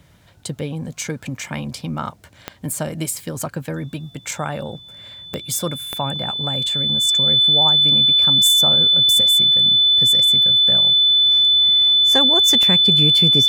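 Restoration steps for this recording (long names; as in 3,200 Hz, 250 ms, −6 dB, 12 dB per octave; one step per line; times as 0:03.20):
click removal
notch filter 3,500 Hz, Q 30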